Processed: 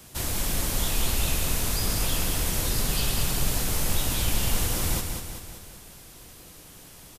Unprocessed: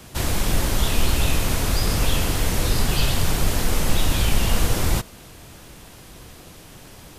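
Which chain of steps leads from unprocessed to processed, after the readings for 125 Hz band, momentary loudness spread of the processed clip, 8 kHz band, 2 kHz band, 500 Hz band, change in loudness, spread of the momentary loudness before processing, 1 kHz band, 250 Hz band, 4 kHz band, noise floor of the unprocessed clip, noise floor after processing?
−6.5 dB, 20 LU, 0.0 dB, −5.5 dB, −7.0 dB, −3.5 dB, 2 LU, −6.5 dB, −6.5 dB, −3.5 dB, −44 dBFS, −48 dBFS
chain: high-shelf EQ 5,500 Hz +9.5 dB
on a send: repeating echo 192 ms, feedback 54%, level −6 dB
on the sum: level −8 dB

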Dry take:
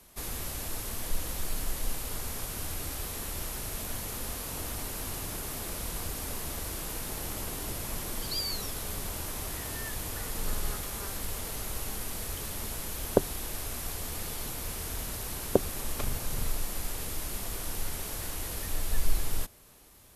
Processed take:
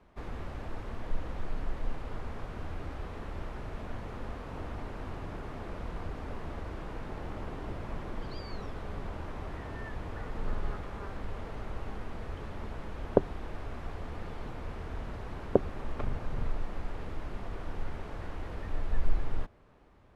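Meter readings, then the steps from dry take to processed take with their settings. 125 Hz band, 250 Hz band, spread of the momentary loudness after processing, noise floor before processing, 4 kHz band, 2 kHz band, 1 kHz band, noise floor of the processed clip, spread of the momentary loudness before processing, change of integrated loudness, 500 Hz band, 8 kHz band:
0.0 dB, 0.0 dB, 6 LU, −38 dBFS, −15.5 dB, −4.5 dB, −0.5 dB, −43 dBFS, 4 LU, −5.0 dB, 0.0 dB, below −25 dB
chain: low-pass filter 1,600 Hz 12 dB per octave

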